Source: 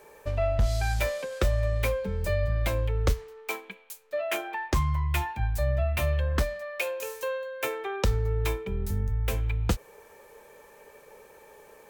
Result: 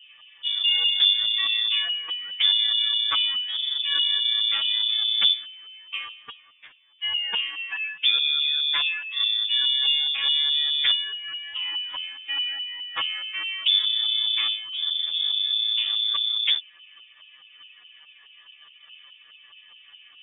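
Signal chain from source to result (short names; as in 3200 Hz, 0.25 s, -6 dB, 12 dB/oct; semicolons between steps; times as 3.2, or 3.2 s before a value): in parallel at -6 dB: decimation with a swept rate 17×, swing 60% 1.5 Hz; on the sum: LFO low-pass saw up 8.1 Hz 620–2500 Hz; time stretch by phase-locked vocoder 1.7×; inverted band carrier 3500 Hz; gain -2.5 dB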